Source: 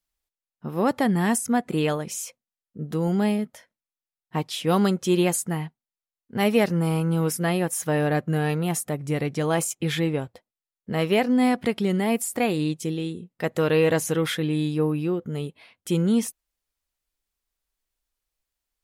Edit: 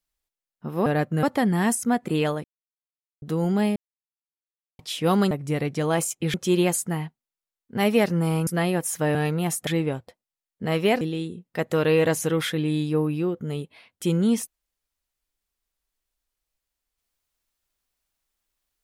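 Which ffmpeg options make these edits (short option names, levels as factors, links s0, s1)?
-filter_complex "[0:a]asplit=13[s0][s1][s2][s3][s4][s5][s6][s7][s8][s9][s10][s11][s12];[s0]atrim=end=0.862[s13];[s1]atrim=start=8.018:end=8.392[s14];[s2]atrim=start=0.858:end=2.07,asetpts=PTS-STARTPTS,afade=t=out:st=1.208:d=0.004:c=hsin[s15];[s3]atrim=start=2.07:end=2.85,asetpts=PTS-STARTPTS,volume=0[s16];[s4]atrim=start=2.85:end=3.39,asetpts=PTS-STARTPTS,afade=t=in:d=0.004:c=hsin,afade=t=out:st=0.536:d=0.004:c=hsin[s17];[s5]atrim=start=3.39:end=4.42,asetpts=PTS-STARTPTS,volume=0[s18];[s6]atrim=start=4.42:end=4.942,asetpts=PTS-STARTPTS,afade=t=in:d=0.004:c=hsin[s19];[s7]atrim=start=8.908:end=9.942[s20];[s8]atrim=start=4.938:end=7.072[s21];[s9]atrim=start=7.338:end=8.022[s22];[s10]atrim=start=8.388:end=8.912[s23];[s11]atrim=start=9.938:end=11.282[s24];[s12]atrim=start=12.858[s25];[s13][s14]acrossfade=d=0.004:c1=hsin:c2=hsin[s26];[s15][s16][s17][s18][s19]concat=n=5:v=0:a=1[s27];[s26][s27]acrossfade=d=0.004:c1=hsin:c2=hsin[s28];[s28][s20]acrossfade=d=0.004:c1=hsin:c2=hsin[s29];[s29][s21]acrossfade=d=0.004:c1=hsin:c2=hsin[s30];[s30][s22]acrossfade=d=0.004:c1=hsin:c2=hsin[s31];[s31][s23]acrossfade=d=0.004:c1=hsin:c2=hsin[s32];[s32][s24]acrossfade=d=0.004:c1=hsin:c2=hsin[s33];[s33][s25]acrossfade=d=0.004:c1=hsin:c2=hsin"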